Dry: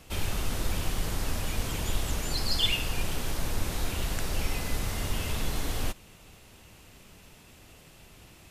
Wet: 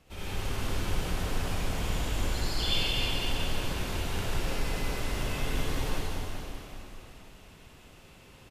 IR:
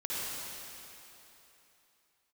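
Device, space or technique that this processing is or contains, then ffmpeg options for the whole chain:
swimming-pool hall: -filter_complex "[0:a]aecho=1:1:187|374|561|748|935|1122|1309:0.355|0.202|0.115|0.0657|0.0375|0.0213|0.0122[a];[1:a]atrim=start_sample=2205[b];[a][b]afir=irnorm=-1:irlink=0,highshelf=f=5.4k:g=-8,volume=-5dB"

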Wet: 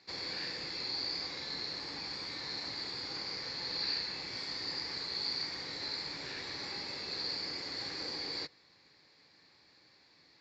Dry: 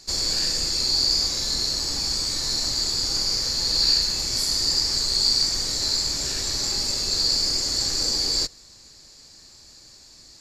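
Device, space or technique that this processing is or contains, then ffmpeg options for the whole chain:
kitchen radio: -af "highpass=190,equalizer=f=230:t=q:w=4:g=-7,equalizer=f=370:t=q:w=4:g=-4,equalizer=f=630:t=q:w=4:g=-6,equalizer=f=1.3k:t=q:w=4:g=-3,equalizer=f=2.1k:t=q:w=4:g=5,equalizer=f=3k:t=q:w=4:g=-5,lowpass=f=3.5k:w=0.5412,lowpass=f=3.5k:w=1.3066,volume=-5.5dB"

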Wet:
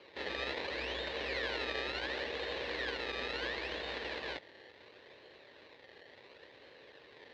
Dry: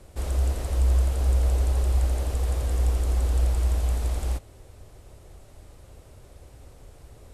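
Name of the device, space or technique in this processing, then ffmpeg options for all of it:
circuit-bent sampling toy: -af "acrusher=samples=24:mix=1:aa=0.000001:lfo=1:lforange=24:lforate=0.71,highpass=420,equalizer=f=470:t=q:w=4:g=3,equalizer=f=720:t=q:w=4:g=-7,equalizer=f=1.3k:t=q:w=4:g=-9,equalizer=f=1.8k:t=q:w=4:g=9,equalizer=f=2.7k:t=q:w=4:g=3,equalizer=f=4k:t=q:w=4:g=9,lowpass=f=4.3k:w=0.5412,lowpass=f=4.3k:w=1.3066"

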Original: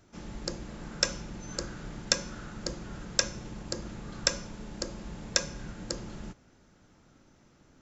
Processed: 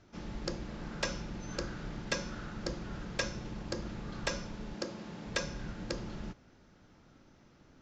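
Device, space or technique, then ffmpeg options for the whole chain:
synthesiser wavefolder: -filter_complex "[0:a]aeval=exprs='0.106*(abs(mod(val(0)/0.106+3,4)-2)-1)':c=same,lowpass=f=5.7k:w=0.5412,lowpass=f=5.7k:w=1.3066,asettb=1/sr,asplit=3[a][b][c];[a]atrim=end=4.744[d];[b]atrim=start=4.74:end=5.27,asetpts=PTS-STARTPTS,afade=t=in:d=0.004:c=qsin,afade=t=out:st=0.526:d=0.004:c=qsin,highpass=150[e];[c]atrim=start=5.266[f];[d][e]acrossfade=d=0.004:c1=hsin:c2=qsin[g];[g][f]acrossfade=d=0.004:c1=qsin:c2=hsin"

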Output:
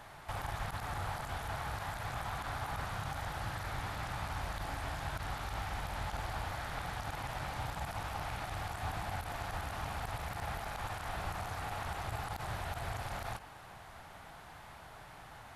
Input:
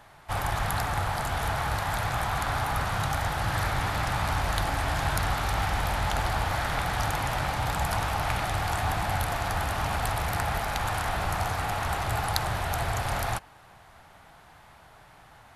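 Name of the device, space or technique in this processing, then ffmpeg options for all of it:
de-esser from a sidechain: -filter_complex "[0:a]asplit=2[a][b];[b]highpass=4.1k,apad=whole_len=685996[c];[a][c]sidechaincompress=threshold=-54dB:ratio=8:attack=3.6:release=24,volume=1dB"

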